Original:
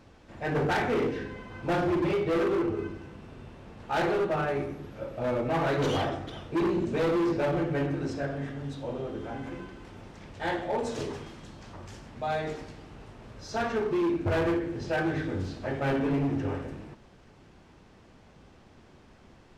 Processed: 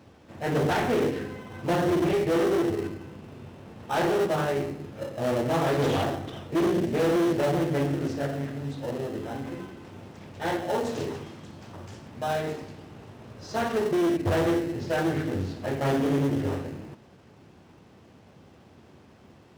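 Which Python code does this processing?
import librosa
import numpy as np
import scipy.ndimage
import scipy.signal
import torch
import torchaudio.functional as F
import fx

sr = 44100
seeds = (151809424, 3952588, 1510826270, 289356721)

p1 = scipy.signal.sosfilt(scipy.signal.butter(4, 76.0, 'highpass', fs=sr, output='sos'), x)
p2 = fx.sample_hold(p1, sr, seeds[0], rate_hz=2300.0, jitter_pct=0)
p3 = p1 + F.gain(torch.from_numpy(p2), -6.5).numpy()
y = fx.doppler_dist(p3, sr, depth_ms=0.42)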